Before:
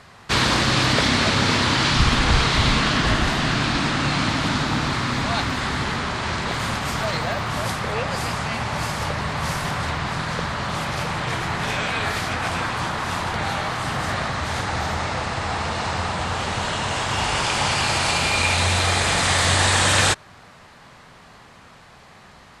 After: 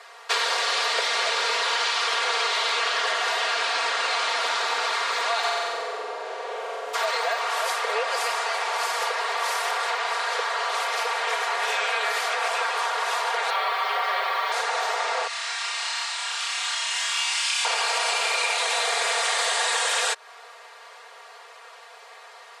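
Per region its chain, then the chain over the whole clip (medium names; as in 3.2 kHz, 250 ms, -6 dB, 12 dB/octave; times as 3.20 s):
5.43–6.93 s: spectral contrast reduction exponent 0.44 + band-pass filter 370 Hz, Q 1.5 + flutter echo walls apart 7.9 m, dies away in 1.3 s
13.50–14.52 s: low-pass 4.4 kHz 24 dB/octave + comb 5.2 ms, depth 70% + word length cut 8-bit, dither none
15.27–17.65 s: Bessel high-pass 2.7 kHz + flutter echo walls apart 5.3 m, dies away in 0.58 s
whole clip: steep high-pass 430 Hz 48 dB/octave; comb 4.3 ms, depth 84%; compression, threshold -21 dBFS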